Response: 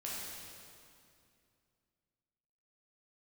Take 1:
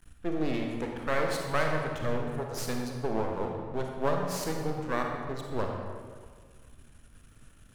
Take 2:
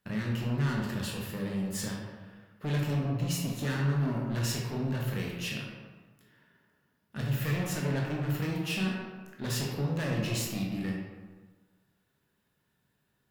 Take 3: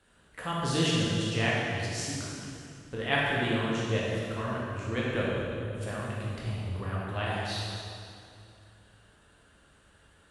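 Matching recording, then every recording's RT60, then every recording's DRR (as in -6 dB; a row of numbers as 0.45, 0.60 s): 3; 1.8, 1.4, 2.4 s; 1.0, -2.5, -6.5 dB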